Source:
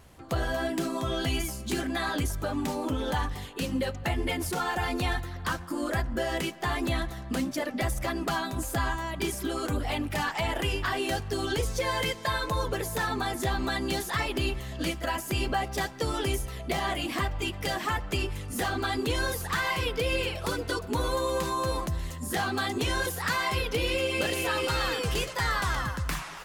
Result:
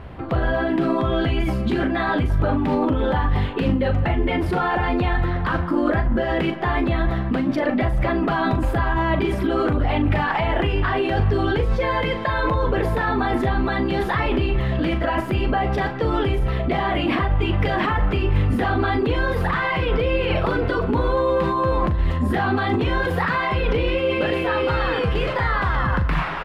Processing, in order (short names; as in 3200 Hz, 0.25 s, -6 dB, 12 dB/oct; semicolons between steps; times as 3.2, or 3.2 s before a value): in parallel at +2 dB: negative-ratio compressor -34 dBFS, ratio -0.5; on the sum: air absorption 450 m; doubler 40 ms -9 dB; gain +6.5 dB